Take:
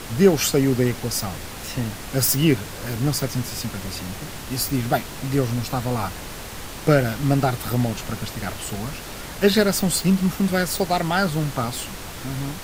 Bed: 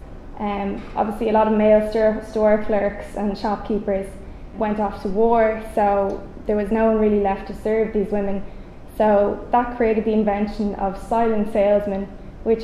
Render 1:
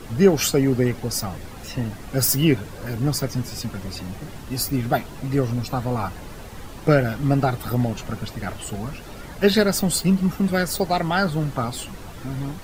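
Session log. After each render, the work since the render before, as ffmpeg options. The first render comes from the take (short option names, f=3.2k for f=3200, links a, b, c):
-af "afftdn=nr=10:nf=-35"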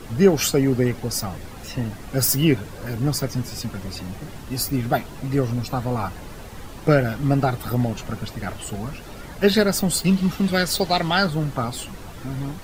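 -filter_complex "[0:a]asettb=1/sr,asplit=3[a][b][c];[a]atrim=end=10.044[d];[b]atrim=start=10.04:end=11.27,asetpts=PTS-STARTPTS,afade=t=in:d=0.004:c=qsin,afade=t=out:st=1.226:d=0.004:c=qsin,equalizer=f=3.7k:t=o:w=1.3:g=8.5[e];[c]atrim=start=11.266[f];[d][e]acrossfade=d=0.004:c1=hsin:c2=qsin[g];[g][f]acrossfade=d=0.004:c1=qsin:c2=hsin"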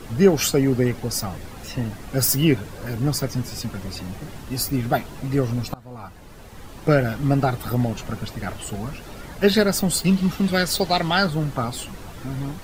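-filter_complex "[0:a]asplit=2[a][b];[a]atrim=end=5.74,asetpts=PTS-STARTPTS,afade=t=out:st=5.736:d=0.004:c=hsin:silence=0.0707946[c];[b]atrim=start=5.74,asetpts=PTS-STARTPTS,afade=t=in:d=1.3:silence=0.0707946[d];[c][d]concat=n=2:v=0:a=1"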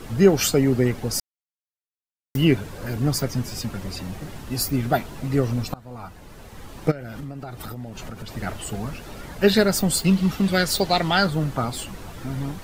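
-filter_complex "[0:a]asplit=3[a][b][c];[a]afade=t=out:st=6.9:d=0.02[d];[b]acompressor=threshold=-30dB:ratio=12:attack=3.2:release=140:knee=1:detection=peak,afade=t=in:st=6.9:d=0.02,afade=t=out:st=8.35:d=0.02[e];[c]afade=t=in:st=8.35:d=0.02[f];[d][e][f]amix=inputs=3:normalize=0,asplit=3[g][h][i];[g]atrim=end=1.2,asetpts=PTS-STARTPTS,afade=t=out:st=1.196:d=0.004:c=hsin[j];[h]atrim=start=1.2:end=2.35,asetpts=PTS-STARTPTS,volume=0[k];[i]atrim=start=2.35,asetpts=PTS-STARTPTS,afade=t=in:d=0.004:c=hsin[l];[j][k][l]concat=n=3:v=0:a=1"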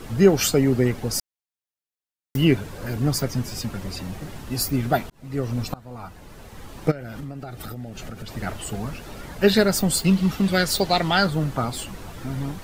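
-filter_complex "[0:a]asettb=1/sr,asplit=3[a][b][c];[a]atrim=end=7.384[d];[b]atrim=start=7.38:end=8.26,asetpts=PTS-STARTPTS,afade=t=in:d=0.004:c=qsin,afade=t=out:st=0.876:d=0.004:c=qsin,equalizer=f=990:w=6.9:g=-11.5[e];[c]atrim=start=8.256[f];[d][e]acrossfade=d=0.004:c1=hsin:c2=qsin[g];[g][f]acrossfade=d=0.004:c1=qsin:c2=hsin,asplit=2[h][i];[h]atrim=end=5.1,asetpts=PTS-STARTPTS,afade=t=out:st=5.096:d=0.004:c=hsin[j];[i]atrim=start=5.1,asetpts=PTS-STARTPTS,afade=t=in:d=0.54[k];[j][k]concat=n=2:v=0:a=1"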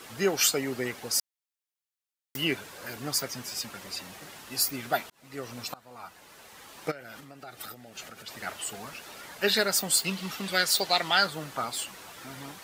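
-af "highpass=f=1.3k:p=1"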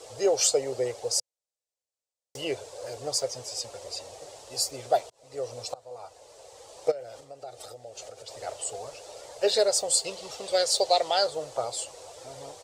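-af "firequalizer=gain_entry='entry(120,0);entry(180,-20);entry(500,12);entry(1000,-4);entry(1500,-13);entry(4500,0);entry(7900,3);entry(14000,-21)':delay=0.05:min_phase=1"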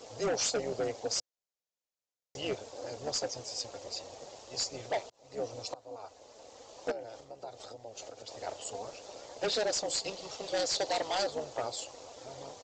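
-af "aresample=16000,volume=25dB,asoftclip=hard,volume=-25dB,aresample=44100,tremolo=f=220:d=0.667"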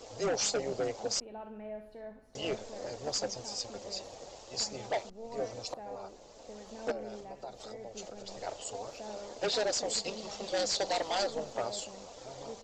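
-filter_complex "[1:a]volume=-28.5dB[a];[0:a][a]amix=inputs=2:normalize=0"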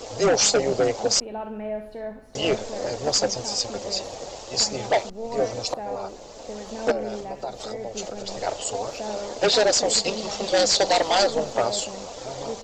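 -af "volume=12dB"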